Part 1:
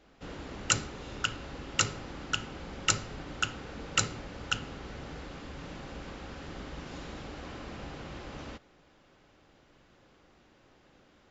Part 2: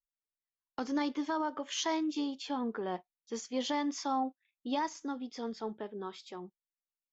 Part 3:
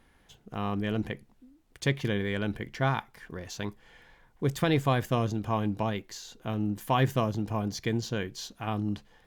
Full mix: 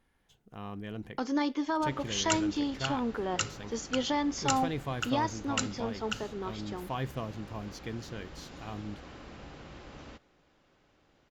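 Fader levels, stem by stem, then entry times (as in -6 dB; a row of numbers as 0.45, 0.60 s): -5.0, +3.0, -10.0 dB; 1.60, 0.40, 0.00 s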